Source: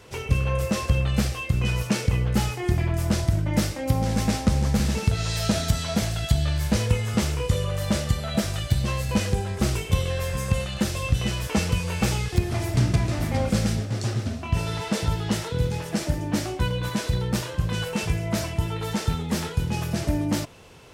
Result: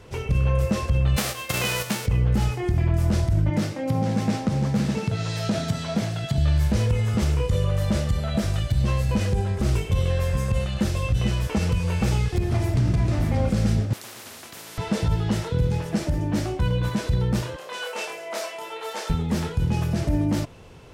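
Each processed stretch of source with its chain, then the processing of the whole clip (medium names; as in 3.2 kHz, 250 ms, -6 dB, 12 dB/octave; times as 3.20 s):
1.16–2.05 s: formants flattened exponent 0.3 + high-pass 130 Hz
3.50–6.38 s: high-pass 120 Hz 24 dB/octave + treble shelf 8.3 kHz -7 dB
13.93–14.78 s: high-pass 360 Hz 24 dB/octave + spectrum-flattening compressor 10:1
17.56–19.10 s: high-pass 480 Hz 24 dB/octave + doubling 29 ms -3.5 dB
whole clip: tilt EQ -1.5 dB/octave; peak limiter -13 dBFS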